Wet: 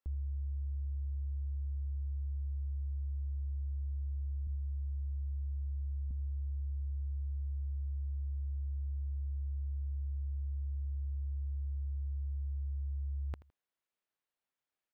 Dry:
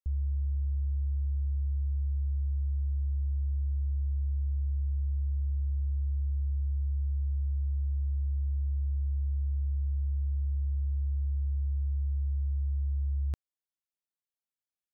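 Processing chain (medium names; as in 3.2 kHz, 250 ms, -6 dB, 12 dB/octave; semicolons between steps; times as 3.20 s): 4.47–6.11 s: high-pass 100 Hz 6 dB/octave; tone controls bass -6 dB, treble -13 dB; peak limiter -40 dBFS, peak gain reduction 7.5 dB; feedback delay 81 ms, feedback 27%, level -18 dB; trim +7 dB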